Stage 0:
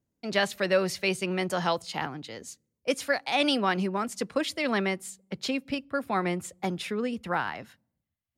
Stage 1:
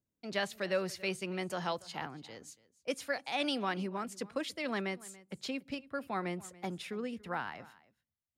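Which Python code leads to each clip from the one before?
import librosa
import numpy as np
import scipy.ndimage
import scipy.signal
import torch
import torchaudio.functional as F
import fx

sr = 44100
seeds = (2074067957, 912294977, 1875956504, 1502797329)

y = x + 10.0 ** (-20.5 / 20.0) * np.pad(x, (int(284 * sr / 1000.0), 0))[:len(x)]
y = y * 10.0 ** (-8.5 / 20.0)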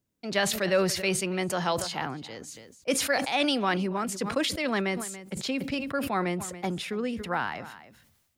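y = fx.sustainer(x, sr, db_per_s=51.0)
y = y * 10.0 ** (7.5 / 20.0)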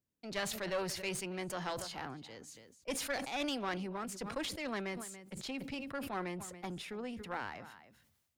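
y = fx.diode_clip(x, sr, knee_db=-27.5)
y = y * 10.0 ** (-9.0 / 20.0)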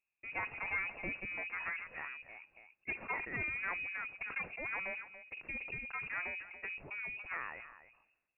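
y = fx.freq_invert(x, sr, carrier_hz=2700)
y = y * 10.0 ** (-1.0 / 20.0)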